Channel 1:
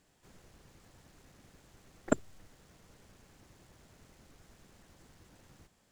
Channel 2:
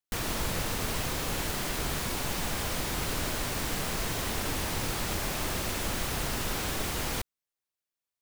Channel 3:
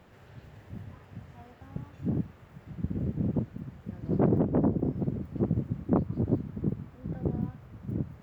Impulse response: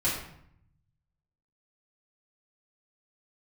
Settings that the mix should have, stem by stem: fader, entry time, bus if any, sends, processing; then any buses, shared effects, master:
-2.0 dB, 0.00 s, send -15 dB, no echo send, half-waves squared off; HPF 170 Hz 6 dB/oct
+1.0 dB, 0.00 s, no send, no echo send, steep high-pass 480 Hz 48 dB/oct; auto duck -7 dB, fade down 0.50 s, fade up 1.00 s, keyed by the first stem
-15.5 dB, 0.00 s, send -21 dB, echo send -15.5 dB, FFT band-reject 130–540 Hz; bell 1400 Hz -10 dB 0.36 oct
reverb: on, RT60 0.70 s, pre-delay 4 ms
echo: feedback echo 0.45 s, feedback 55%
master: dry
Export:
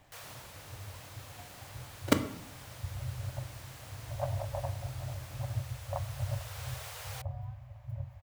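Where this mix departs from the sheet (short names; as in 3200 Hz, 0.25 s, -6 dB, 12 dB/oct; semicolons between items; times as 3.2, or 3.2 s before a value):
stem 2 +1.0 dB -> -10.5 dB; stem 3 -15.5 dB -> -3.5 dB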